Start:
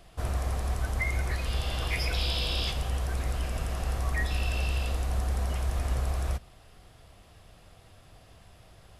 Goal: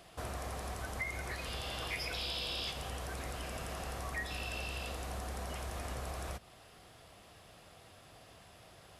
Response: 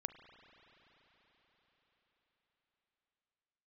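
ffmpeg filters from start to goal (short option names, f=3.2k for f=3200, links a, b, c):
-af "highpass=f=220:p=1,acompressor=threshold=-42dB:ratio=2,volume=1dB"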